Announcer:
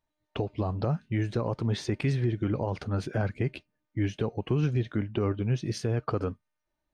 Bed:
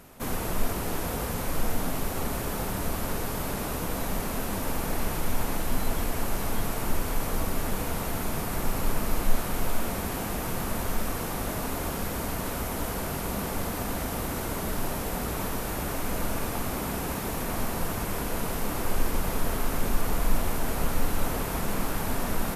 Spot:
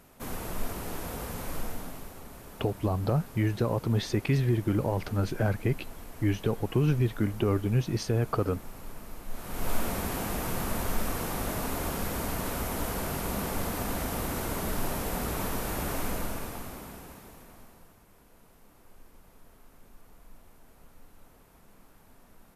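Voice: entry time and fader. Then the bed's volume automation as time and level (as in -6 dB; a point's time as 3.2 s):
2.25 s, +1.5 dB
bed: 1.55 s -6 dB
2.23 s -16 dB
9.26 s -16 dB
9.72 s -1 dB
16.03 s -1 dB
18.03 s -28.5 dB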